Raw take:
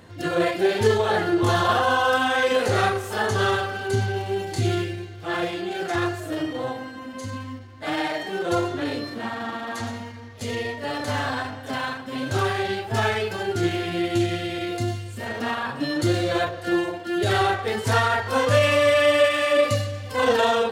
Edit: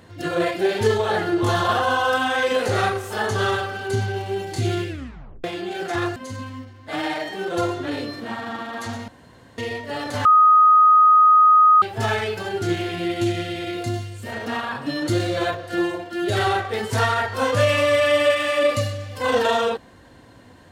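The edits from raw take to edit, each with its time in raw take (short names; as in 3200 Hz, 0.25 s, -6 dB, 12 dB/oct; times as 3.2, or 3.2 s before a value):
4.89 tape stop 0.55 s
6.16–7.1 cut
10.02–10.52 room tone
11.19–12.76 bleep 1250 Hz -9.5 dBFS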